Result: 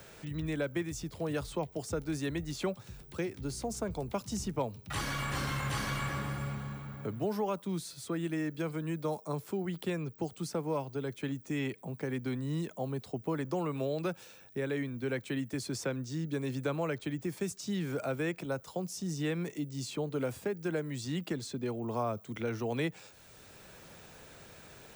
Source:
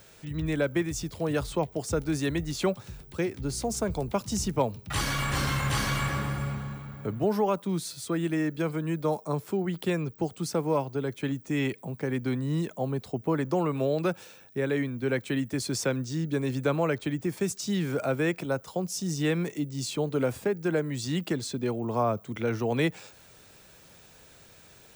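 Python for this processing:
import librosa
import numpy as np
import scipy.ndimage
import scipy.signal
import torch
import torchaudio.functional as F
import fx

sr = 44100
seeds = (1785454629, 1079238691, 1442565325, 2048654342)

y = fx.band_squash(x, sr, depth_pct=40)
y = y * 10.0 ** (-6.5 / 20.0)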